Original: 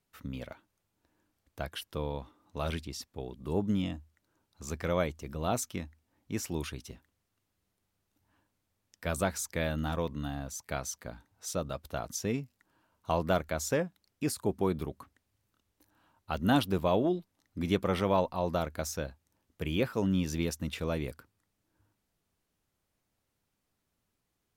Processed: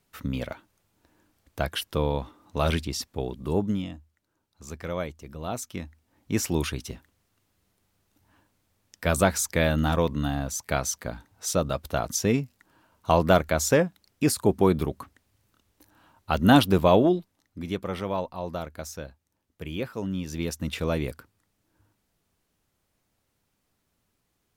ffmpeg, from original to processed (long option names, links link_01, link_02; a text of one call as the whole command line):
ffmpeg -i in.wav -af "volume=28dB,afade=type=out:start_time=3.26:duration=0.6:silence=0.281838,afade=type=in:start_time=5.59:duration=0.78:silence=0.298538,afade=type=out:start_time=16.95:duration=0.67:silence=0.281838,afade=type=in:start_time=20.25:duration=0.52:silence=0.398107" out.wav